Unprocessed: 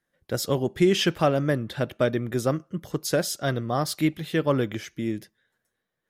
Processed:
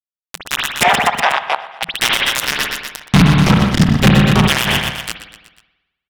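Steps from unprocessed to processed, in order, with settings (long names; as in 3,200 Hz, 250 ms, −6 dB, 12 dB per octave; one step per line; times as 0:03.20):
gate on every frequency bin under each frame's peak −30 dB weak
downward expander −42 dBFS
0:03.06–0:04.45: spectral tilt −4.5 dB per octave
fuzz pedal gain 41 dB, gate −48 dBFS
pitch vibrato 2.2 Hz 9.2 cents
ring modulation 170 Hz
0:00.83–0:01.83: four-pole ladder band-pass 850 Hz, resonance 60%
repeating echo 122 ms, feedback 60%, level −22.5 dB
spring reverb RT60 1.1 s, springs 54 ms, chirp 25 ms, DRR 16 dB
boost into a limiter +34.5 dB
level −1 dB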